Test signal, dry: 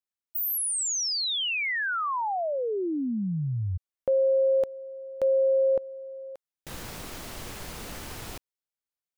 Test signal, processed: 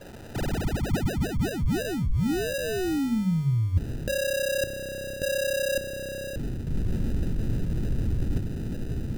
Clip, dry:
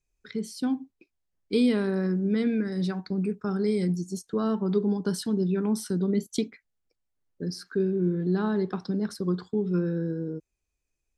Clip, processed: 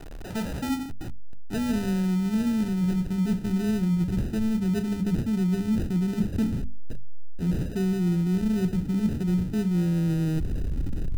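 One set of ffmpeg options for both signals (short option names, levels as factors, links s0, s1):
-af "aeval=exprs='val(0)+0.5*0.02*sgn(val(0))':c=same,adynamicequalizer=threshold=0.00141:dfrequency=6700:dqfactor=4.7:tfrequency=6700:tqfactor=4.7:attack=5:release=100:ratio=0.375:range=3.5:mode=boostabove:tftype=bell,acrusher=samples=40:mix=1:aa=0.000001,asubboost=boost=10.5:cutoff=220,areverse,acompressor=threshold=0.0708:ratio=6:attack=23:release=281:knee=6:detection=peak,areverse,bandreject=f=50:t=h:w=6,bandreject=f=100:t=h:w=6,bandreject=f=150:t=h:w=6,bandreject=f=200:t=h:w=6,bandreject=f=250:t=h:w=6"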